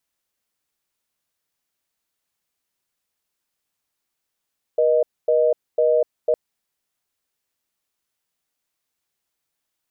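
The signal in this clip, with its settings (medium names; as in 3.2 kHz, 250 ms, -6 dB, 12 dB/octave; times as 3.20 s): call progress tone reorder tone, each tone -17 dBFS 1.56 s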